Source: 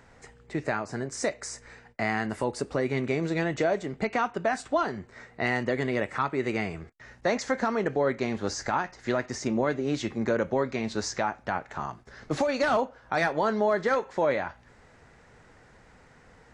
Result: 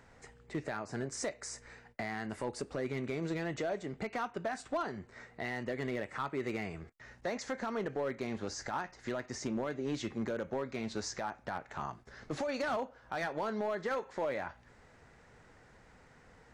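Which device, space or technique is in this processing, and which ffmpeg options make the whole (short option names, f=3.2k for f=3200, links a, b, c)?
limiter into clipper: -af "alimiter=limit=-20dB:level=0:latency=1:release=288,asoftclip=type=hard:threshold=-23.5dB,volume=-4.5dB"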